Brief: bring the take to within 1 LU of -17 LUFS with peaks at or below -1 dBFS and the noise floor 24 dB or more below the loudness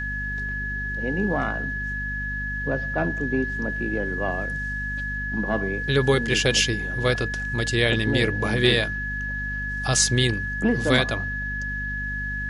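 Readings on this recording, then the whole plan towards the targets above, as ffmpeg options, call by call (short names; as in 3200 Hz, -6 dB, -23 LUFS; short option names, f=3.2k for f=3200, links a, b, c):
hum 50 Hz; harmonics up to 250 Hz; hum level -30 dBFS; steady tone 1700 Hz; tone level -28 dBFS; loudness -24.0 LUFS; peak -5.5 dBFS; loudness target -17.0 LUFS
-> -af "bandreject=f=50:t=h:w=4,bandreject=f=100:t=h:w=4,bandreject=f=150:t=h:w=4,bandreject=f=200:t=h:w=4,bandreject=f=250:t=h:w=4"
-af "bandreject=f=1.7k:w=30"
-af "volume=7dB,alimiter=limit=-1dB:level=0:latency=1"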